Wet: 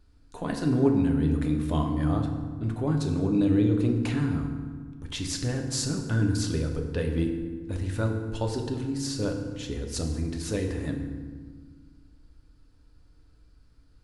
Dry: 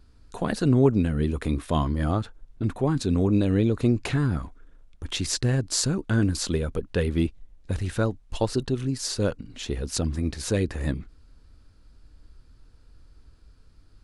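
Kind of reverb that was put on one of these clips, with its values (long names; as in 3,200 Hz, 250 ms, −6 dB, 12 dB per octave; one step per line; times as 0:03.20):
feedback delay network reverb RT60 1.6 s, low-frequency decay 1.5×, high-frequency decay 0.6×, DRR 2.5 dB
level −6 dB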